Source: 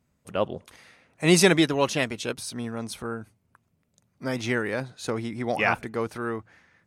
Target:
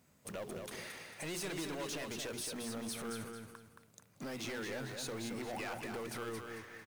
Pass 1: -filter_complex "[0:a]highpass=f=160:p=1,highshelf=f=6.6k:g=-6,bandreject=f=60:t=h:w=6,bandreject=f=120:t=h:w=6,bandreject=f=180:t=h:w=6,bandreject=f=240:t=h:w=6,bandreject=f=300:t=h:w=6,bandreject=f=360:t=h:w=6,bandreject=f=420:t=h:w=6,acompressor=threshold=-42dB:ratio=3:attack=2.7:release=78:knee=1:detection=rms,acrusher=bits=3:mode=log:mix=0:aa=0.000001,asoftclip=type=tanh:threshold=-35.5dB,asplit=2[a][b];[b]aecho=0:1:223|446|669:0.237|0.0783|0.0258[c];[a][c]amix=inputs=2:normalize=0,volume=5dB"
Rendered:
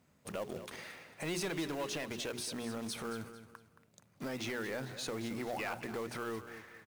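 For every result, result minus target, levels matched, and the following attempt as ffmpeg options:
echo-to-direct -7 dB; soft clip: distortion -7 dB; 8000 Hz band -3.0 dB
-filter_complex "[0:a]highpass=f=160:p=1,highshelf=f=6.6k:g=-6,bandreject=f=60:t=h:w=6,bandreject=f=120:t=h:w=6,bandreject=f=180:t=h:w=6,bandreject=f=240:t=h:w=6,bandreject=f=300:t=h:w=6,bandreject=f=360:t=h:w=6,bandreject=f=420:t=h:w=6,acompressor=threshold=-42dB:ratio=3:attack=2.7:release=78:knee=1:detection=rms,acrusher=bits=3:mode=log:mix=0:aa=0.000001,asoftclip=type=tanh:threshold=-35.5dB,asplit=2[a][b];[b]aecho=0:1:223|446|669|892:0.531|0.175|0.0578|0.0191[c];[a][c]amix=inputs=2:normalize=0,volume=5dB"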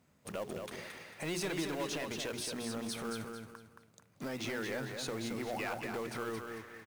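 soft clip: distortion -7 dB; 8000 Hz band -2.5 dB
-filter_complex "[0:a]highpass=f=160:p=1,highshelf=f=6.6k:g=-6,bandreject=f=60:t=h:w=6,bandreject=f=120:t=h:w=6,bandreject=f=180:t=h:w=6,bandreject=f=240:t=h:w=6,bandreject=f=300:t=h:w=6,bandreject=f=360:t=h:w=6,bandreject=f=420:t=h:w=6,acompressor=threshold=-42dB:ratio=3:attack=2.7:release=78:knee=1:detection=rms,acrusher=bits=3:mode=log:mix=0:aa=0.000001,asoftclip=type=tanh:threshold=-43dB,asplit=2[a][b];[b]aecho=0:1:223|446|669|892:0.531|0.175|0.0578|0.0191[c];[a][c]amix=inputs=2:normalize=0,volume=5dB"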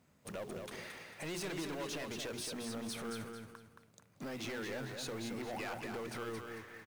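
8000 Hz band -2.5 dB
-filter_complex "[0:a]highpass=f=160:p=1,highshelf=f=6.6k:g=5,bandreject=f=60:t=h:w=6,bandreject=f=120:t=h:w=6,bandreject=f=180:t=h:w=6,bandreject=f=240:t=h:w=6,bandreject=f=300:t=h:w=6,bandreject=f=360:t=h:w=6,bandreject=f=420:t=h:w=6,acompressor=threshold=-42dB:ratio=3:attack=2.7:release=78:knee=1:detection=rms,acrusher=bits=3:mode=log:mix=0:aa=0.000001,asoftclip=type=tanh:threshold=-43dB,asplit=2[a][b];[b]aecho=0:1:223|446|669|892:0.531|0.175|0.0578|0.0191[c];[a][c]amix=inputs=2:normalize=0,volume=5dB"

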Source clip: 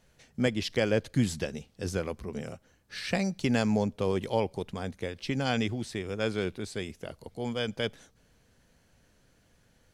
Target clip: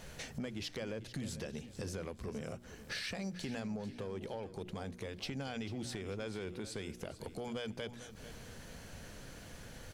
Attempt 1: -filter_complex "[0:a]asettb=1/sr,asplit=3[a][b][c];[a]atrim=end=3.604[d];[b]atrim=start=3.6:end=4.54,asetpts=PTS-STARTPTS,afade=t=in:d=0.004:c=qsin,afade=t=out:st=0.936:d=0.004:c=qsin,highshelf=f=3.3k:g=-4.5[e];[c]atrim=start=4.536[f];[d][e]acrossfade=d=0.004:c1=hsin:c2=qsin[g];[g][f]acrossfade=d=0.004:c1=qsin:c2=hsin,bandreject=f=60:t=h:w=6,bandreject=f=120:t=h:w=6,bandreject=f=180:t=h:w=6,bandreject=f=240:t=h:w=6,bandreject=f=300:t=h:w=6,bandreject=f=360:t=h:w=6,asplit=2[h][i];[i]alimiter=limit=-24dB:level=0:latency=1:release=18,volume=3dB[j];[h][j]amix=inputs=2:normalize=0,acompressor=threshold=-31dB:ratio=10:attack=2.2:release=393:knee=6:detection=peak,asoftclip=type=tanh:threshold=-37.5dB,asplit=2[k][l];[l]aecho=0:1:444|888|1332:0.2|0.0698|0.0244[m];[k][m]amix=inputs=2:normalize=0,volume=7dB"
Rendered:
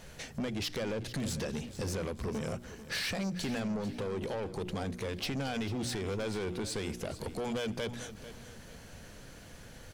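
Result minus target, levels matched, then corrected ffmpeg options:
compressor: peak gain reduction -10 dB
-filter_complex "[0:a]asettb=1/sr,asplit=3[a][b][c];[a]atrim=end=3.604[d];[b]atrim=start=3.6:end=4.54,asetpts=PTS-STARTPTS,afade=t=in:d=0.004:c=qsin,afade=t=out:st=0.936:d=0.004:c=qsin,highshelf=f=3.3k:g=-4.5[e];[c]atrim=start=4.536[f];[d][e]acrossfade=d=0.004:c1=hsin:c2=qsin[g];[g][f]acrossfade=d=0.004:c1=qsin:c2=hsin,bandreject=f=60:t=h:w=6,bandreject=f=120:t=h:w=6,bandreject=f=180:t=h:w=6,bandreject=f=240:t=h:w=6,bandreject=f=300:t=h:w=6,bandreject=f=360:t=h:w=6,asplit=2[h][i];[i]alimiter=limit=-24dB:level=0:latency=1:release=18,volume=3dB[j];[h][j]amix=inputs=2:normalize=0,acompressor=threshold=-42dB:ratio=10:attack=2.2:release=393:knee=6:detection=peak,asoftclip=type=tanh:threshold=-37.5dB,asplit=2[k][l];[l]aecho=0:1:444|888|1332:0.2|0.0698|0.0244[m];[k][m]amix=inputs=2:normalize=0,volume=7dB"

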